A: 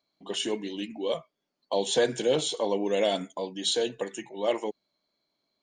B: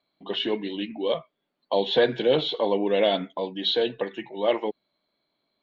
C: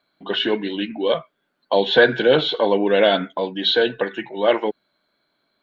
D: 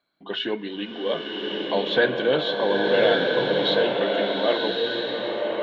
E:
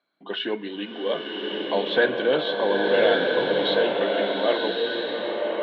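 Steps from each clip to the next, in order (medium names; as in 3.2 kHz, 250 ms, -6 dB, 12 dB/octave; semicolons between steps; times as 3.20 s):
elliptic low-pass 3.9 kHz, stop band 70 dB; trim +4.5 dB
peaking EQ 1.5 kHz +13 dB 0.32 oct; trim +5.5 dB
swelling reverb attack 1210 ms, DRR -1 dB; trim -6.5 dB
band-pass 190–4000 Hz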